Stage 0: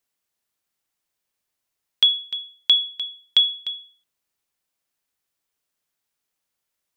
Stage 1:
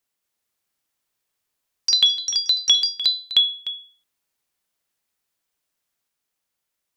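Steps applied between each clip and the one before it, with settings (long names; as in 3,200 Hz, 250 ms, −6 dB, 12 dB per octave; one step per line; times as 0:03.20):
delay with pitch and tempo change per echo 226 ms, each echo +3 semitones, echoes 3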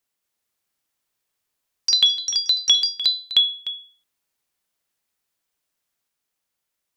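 no processing that can be heard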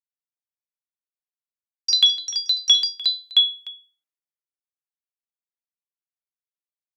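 high-pass filter 270 Hz 12 dB per octave
multiband upward and downward expander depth 70%
level −1.5 dB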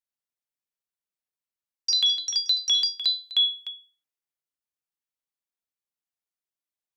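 brickwall limiter −15 dBFS, peak gain reduction 9 dB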